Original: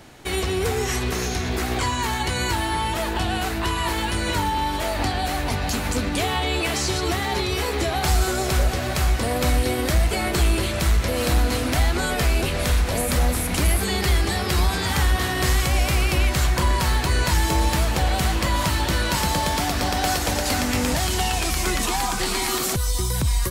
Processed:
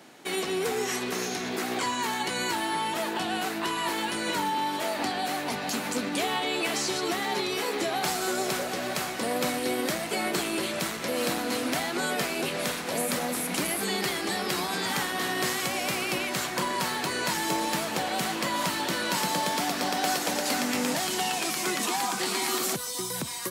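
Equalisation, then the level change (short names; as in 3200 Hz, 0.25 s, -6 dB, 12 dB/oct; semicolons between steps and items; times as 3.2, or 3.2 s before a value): HPF 180 Hz 24 dB/oct; -4.0 dB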